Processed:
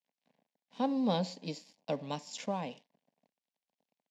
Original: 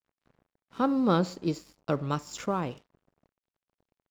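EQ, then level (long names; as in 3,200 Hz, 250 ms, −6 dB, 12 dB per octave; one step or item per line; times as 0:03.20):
band-pass filter 270–5,500 Hz
parametric band 510 Hz −6 dB 1.1 octaves
phaser with its sweep stopped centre 350 Hz, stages 6
+2.0 dB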